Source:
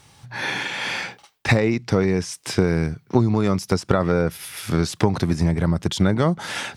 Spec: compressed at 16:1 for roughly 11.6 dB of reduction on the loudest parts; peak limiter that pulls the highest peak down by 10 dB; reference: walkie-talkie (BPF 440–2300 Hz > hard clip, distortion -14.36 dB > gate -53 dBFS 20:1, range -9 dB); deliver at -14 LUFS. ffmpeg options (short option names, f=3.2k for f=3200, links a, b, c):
-af "acompressor=threshold=-24dB:ratio=16,alimiter=limit=-19dB:level=0:latency=1,highpass=440,lowpass=2.3k,asoftclip=type=hard:threshold=-29.5dB,agate=range=-9dB:threshold=-53dB:ratio=20,volume=23.5dB"